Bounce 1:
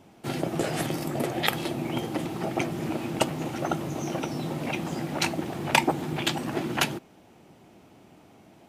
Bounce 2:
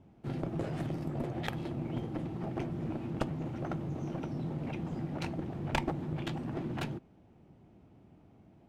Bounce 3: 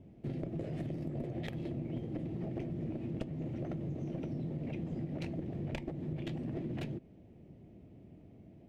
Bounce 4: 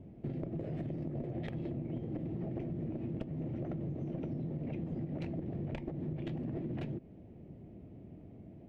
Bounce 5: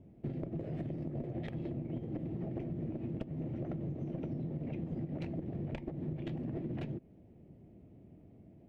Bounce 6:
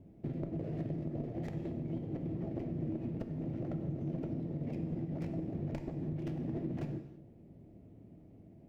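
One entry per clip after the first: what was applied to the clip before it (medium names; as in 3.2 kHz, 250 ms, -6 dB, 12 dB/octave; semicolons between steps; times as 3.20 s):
Chebyshev shaper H 7 -24 dB, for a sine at -2 dBFS; RIAA curve playback; one-sided clip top -27 dBFS; trim -7 dB
treble shelf 2.6 kHz -8.5 dB; compression 4:1, threshold -40 dBFS, peak gain reduction 12.5 dB; high-order bell 1.1 kHz -11 dB 1.2 oct; trim +4 dB
low-pass 1.8 kHz 6 dB/octave; compression 3:1, threshold -40 dBFS, peak gain reduction 6.5 dB; trim +4 dB
upward expansion 1.5:1, over -48 dBFS; trim +1 dB
median filter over 15 samples; gated-style reverb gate 360 ms falling, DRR 6.5 dB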